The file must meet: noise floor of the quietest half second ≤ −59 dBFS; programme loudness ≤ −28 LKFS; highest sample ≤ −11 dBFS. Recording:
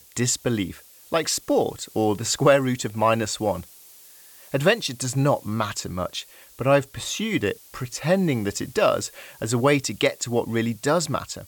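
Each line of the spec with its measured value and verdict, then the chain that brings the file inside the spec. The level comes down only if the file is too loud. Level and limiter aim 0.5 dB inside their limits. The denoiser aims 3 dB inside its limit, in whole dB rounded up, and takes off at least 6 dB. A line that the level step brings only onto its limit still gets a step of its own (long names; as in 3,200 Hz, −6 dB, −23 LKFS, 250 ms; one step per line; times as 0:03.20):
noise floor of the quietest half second −48 dBFS: out of spec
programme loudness −23.5 LKFS: out of spec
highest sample −5.0 dBFS: out of spec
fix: broadband denoise 9 dB, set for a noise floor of −48 dBFS
level −5 dB
brickwall limiter −11.5 dBFS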